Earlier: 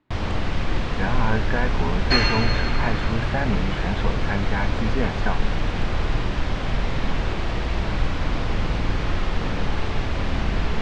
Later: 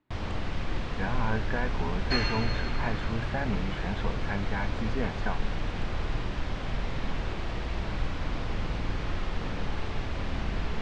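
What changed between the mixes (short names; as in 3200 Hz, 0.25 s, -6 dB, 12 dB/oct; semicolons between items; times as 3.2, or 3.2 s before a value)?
speech -6.5 dB; first sound -8.0 dB; second sound -9.5 dB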